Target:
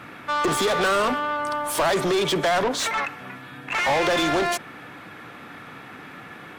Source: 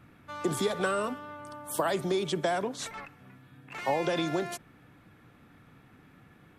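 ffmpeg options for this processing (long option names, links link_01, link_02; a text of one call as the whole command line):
ffmpeg -i in.wav -filter_complex "[0:a]asplit=2[link_01][link_02];[link_02]highpass=frequency=720:poles=1,volume=28dB,asoftclip=type=tanh:threshold=-14dB[link_03];[link_01][link_03]amix=inputs=2:normalize=0,lowpass=frequency=4200:poles=1,volume=-6dB" out.wav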